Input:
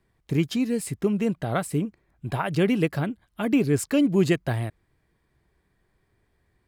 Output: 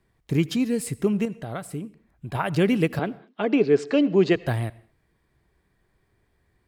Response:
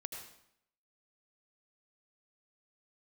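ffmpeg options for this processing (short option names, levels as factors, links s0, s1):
-filter_complex "[0:a]asettb=1/sr,asplit=3[s0][s1][s2];[s0]atrim=end=1.254[s3];[s1]atrim=start=1.25:end=2.35,asetpts=PTS-STARTPTS,afade=t=in:d=0.004:c=qsin,afade=t=out:st=1.096:d=0.004:c=qsin,acompressor=threshold=0.0141:ratio=2[s4];[s2]atrim=start=2.346[s5];[s3][s4]acrossfade=d=0.004:c1=hsin:c2=qsin[s6];[s6][s5]acrossfade=d=0.004:c1=qsin:c2=hsin,asettb=1/sr,asplit=3[s7][s8][s9];[s7]atrim=end=2.994[s10];[s8]atrim=start=2.99:end=4.36,asetpts=PTS-STARTPTS,afade=t=in:d=0.004:c=qsin,afade=t=out:st=1.366:d=0.004:c=qsin,highpass=f=180:w=0.5412,highpass=f=180:w=1.3066,equalizer=f=240:t=q:w=4:g=-5,equalizer=f=440:t=q:w=4:g=7,equalizer=f=720:t=q:w=4:g=4,lowpass=f=5200:w=0.5412,lowpass=f=5200:w=1.3066[s11];[s9]atrim=start=4.356[s12];[s10][s11]acrossfade=d=0.004:c1=hsin:c2=qsin[s13];[s13][s12]acrossfade=d=0.004:c1=qsin:c2=hsin,asplit=2[s14][s15];[1:a]atrim=start_sample=2205,afade=t=out:st=0.28:d=0.01,atrim=end_sample=12789[s16];[s15][s16]afir=irnorm=-1:irlink=0,volume=0.224[s17];[s14][s17]amix=inputs=2:normalize=0"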